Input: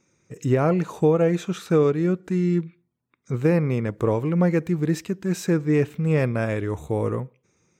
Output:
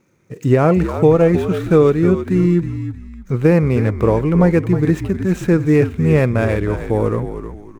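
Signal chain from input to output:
running median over 9 samples
echo with shifted repeats 314 ms, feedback 31%, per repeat −58 Hz, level −10 dB
level +7 dB

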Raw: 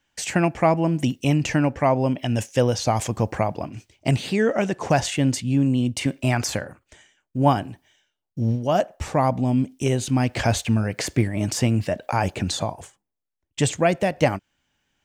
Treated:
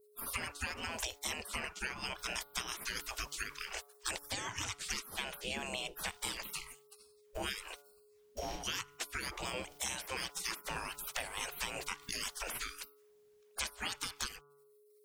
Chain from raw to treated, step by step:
gate on every frequency bin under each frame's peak −30 dB weak
low-shelf EQ 260 Hz +8 dB
hum removal 143.9 Hz, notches 10
downward compressor 6 to 1, threshold −53 dBFS, peak gain reduction 18 dB
steady tone 420 Hz −79 dBFS
level +16 dB

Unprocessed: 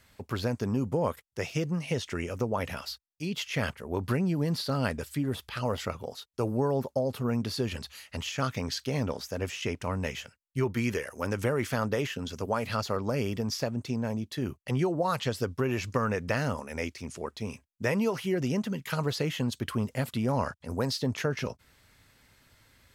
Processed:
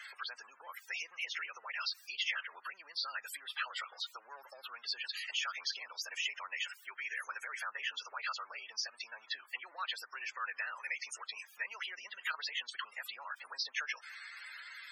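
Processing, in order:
converter with a step at zero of −41 dBFS
downward compressor 8 to 1, threshold −31 dBFS, peak gain reduction 9.5 dB
phase-vocoder stretch with locked phases 0.65×
spectral peaks only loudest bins 64
four-pole ladder high-pass 1,200 Hz, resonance 30%
level +9.5 dB

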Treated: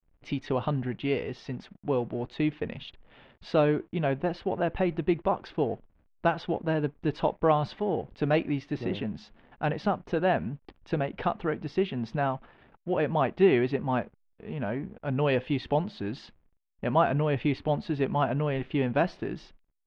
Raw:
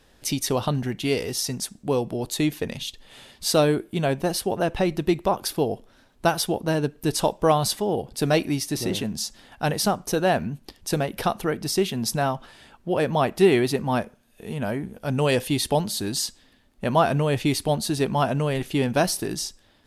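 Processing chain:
slack as between gear wheels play −43.5 dBFS
low-pass filter 2,900 Hz 24 dB per octave
level −4 dB

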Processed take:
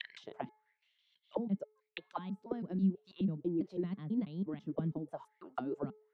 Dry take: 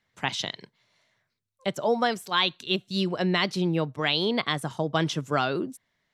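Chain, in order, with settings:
slices reordered back to front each 164 ms, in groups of 4
tilt shelving filter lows −3 dB
envelope filter 200–3,400 Hz, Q 5.9, down, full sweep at −22.5 dBFS
low-shelf EQ 140 Hz +10.5 dB
hum removal 429.1 Hz, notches 5

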